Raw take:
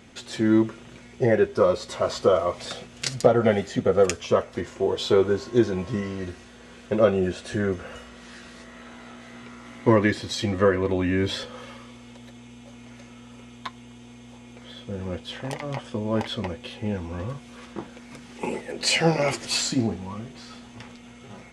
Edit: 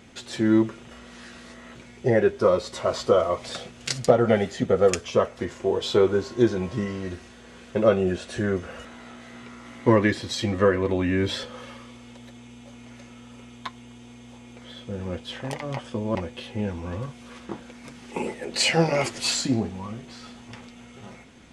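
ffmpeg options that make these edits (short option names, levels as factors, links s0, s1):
-filter_complex "[0:a]asplit=5[s0][s1][s2][s3][s4];[s0]atrim=end=0.912[s5];[s1]atrim=start=8.008:end=8.852[s6];[s2]atrim=start=0.908:end=8.012[s7];[s3]atrim=start=8.848:end=16.152[s8];[s4]atrim=start=16.418[s9];[s5][s6]acrossfade=d=0.004:c1=hsin:c2=hsin[s10];[s10][s7]acrossfade=d=0.004:c1=hsin:c2=hsin[s11];[s11][s8]acrossfade=d=0.004:c1=hsin:c2=hsin[s12];[s12][s9]acrossfade=d=0.004:c1=hsin:c2=hsin"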